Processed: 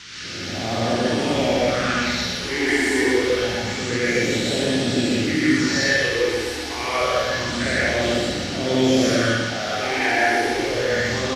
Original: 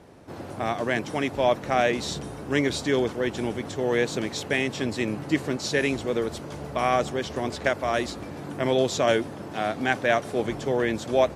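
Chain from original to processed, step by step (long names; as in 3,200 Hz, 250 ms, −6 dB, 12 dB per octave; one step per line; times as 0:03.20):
every bin's largest magnitude spread in time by 120 ms
all-pass phaser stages 8, 0.27 Hz, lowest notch 160–2,100 Hz
noise in a band 1,300–5,800 Hz −36 dBFS
on a send: repeating echo 123 ms, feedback 52%, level −5.5 dB
on the sum: reverb whose tail is shaped and stops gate 200 ms rising, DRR −6 dB
level −5 dB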